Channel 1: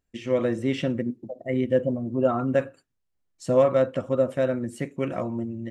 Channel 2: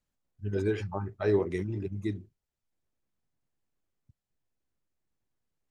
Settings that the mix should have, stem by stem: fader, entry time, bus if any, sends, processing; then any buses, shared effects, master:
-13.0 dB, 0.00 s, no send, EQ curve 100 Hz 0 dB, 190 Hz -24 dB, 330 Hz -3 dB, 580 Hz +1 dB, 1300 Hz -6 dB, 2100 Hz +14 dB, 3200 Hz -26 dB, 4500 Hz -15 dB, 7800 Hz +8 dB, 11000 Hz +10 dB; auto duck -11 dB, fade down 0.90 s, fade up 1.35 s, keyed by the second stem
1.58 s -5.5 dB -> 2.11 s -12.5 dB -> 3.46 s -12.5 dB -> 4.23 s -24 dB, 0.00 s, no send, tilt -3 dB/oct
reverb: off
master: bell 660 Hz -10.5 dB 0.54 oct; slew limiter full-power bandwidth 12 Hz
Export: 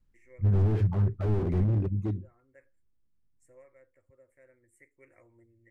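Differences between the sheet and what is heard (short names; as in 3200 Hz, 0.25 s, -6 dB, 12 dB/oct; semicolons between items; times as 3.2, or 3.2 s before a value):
stem 1 -13.0 dB -> -23.5 dB; stem 2 -5.5 dB -> +3.0 dB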